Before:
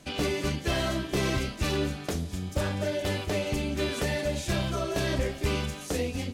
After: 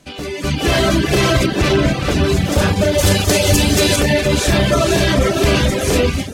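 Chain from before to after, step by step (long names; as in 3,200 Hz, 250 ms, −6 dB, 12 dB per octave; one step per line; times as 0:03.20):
feedback delay with all-pass diffusion 489 ms, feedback 40%, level −3 dB
reverb reduction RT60 0.64 s
brickwall limiter −22 dBFS, peak gain reduction 6.5 dB
0:02.98–0:03.96: bass and treble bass +2 dB, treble +11 dB
automatic gain control gain up to 14.5 dB
0:01.46–0:02.24: high-shelf EQ 6,400 Hz −10 dB
level +2.5 dB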